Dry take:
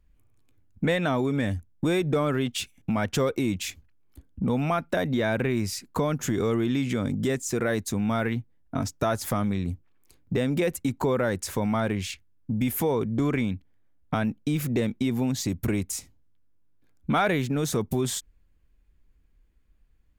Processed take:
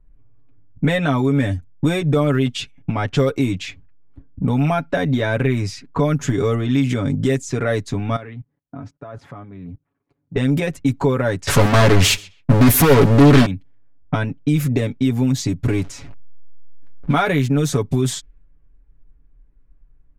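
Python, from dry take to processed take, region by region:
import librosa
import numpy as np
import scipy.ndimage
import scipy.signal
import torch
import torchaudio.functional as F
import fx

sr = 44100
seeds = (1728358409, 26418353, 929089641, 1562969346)

y = fx.chain(x, sr, fx.highpass(hz=110.0, slope=12),
    fx.level_steps(step_db=20), at=(8.16, 10.36))
y = fx.chain(y, sr, fx.leveller(passes=5),
    fx.echo_feedback(ms=132, feedback_pct=21, wet_db=-23.5),
    fx.doppler_dist(depth_ms=0.41), at=(11.47, 13.46))
y = fx.chain(y, sr, fx.zero_step(step_db=-40.0),
    fx.resample_linear(factor=2), at=(15.66, 17.14))
y = fx.low_shelf(y, sr, hz=110.0, db=7.0)
y = y + 0.71 * np.pad(y, (int(7.1 * sr / 1000.0), 0))[:len(y)]
y = fx.env_lowpass(y, sr, base_hz=1300.0, full_db=-17.0)
y = y * librosa.db_to_amplitude(3.5)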